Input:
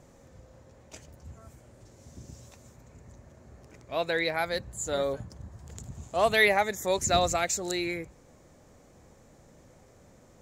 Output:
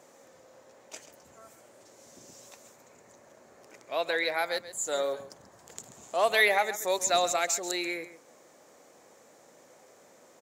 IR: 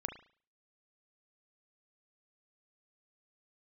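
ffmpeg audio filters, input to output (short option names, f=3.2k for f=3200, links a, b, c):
-filter_complex "[0:a]highpass=410,highshelf=f=11k:g=4,asplit=2[a][b];[b]acompressor=threshold=-38dB:ratio=6,volume=-2.5dB[c];[a][c]amix=inputs=2:normalize=0,aecho=1:1:135:0.2,volume=-1.5dB"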